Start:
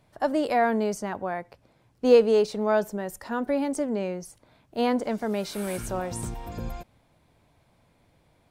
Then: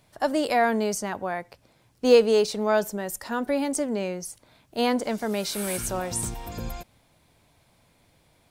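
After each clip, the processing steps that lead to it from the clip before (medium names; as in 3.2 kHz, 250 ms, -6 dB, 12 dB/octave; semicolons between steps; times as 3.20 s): treble shelf 2.6 kHz +9.5 dB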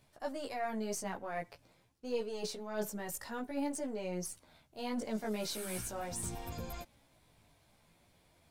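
partial rectifier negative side -3 dB; reverse; compression 5:1, threshold -32 dBFS, peak gain reduction 17.5 dB; reverse; chorus voices 2, 0.47 Hz, delay 15 ms, depth 3.9 ms; trim -1 dB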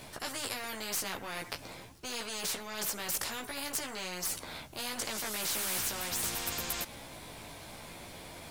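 spectrum-flattening compressor 4:1; trim +8 dB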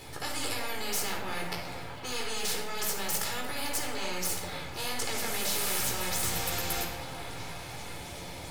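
repeats whose band climbs or falls 385 ms, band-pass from 680 Hz, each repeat 0.7 oct, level -4.5 dB; reverberation RT60 0.95 s, pre-delay 27 ms, DRR 2.5 dB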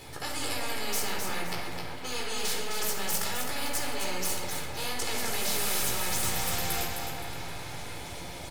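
feedback delay 260 ms, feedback 32%, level -6 dB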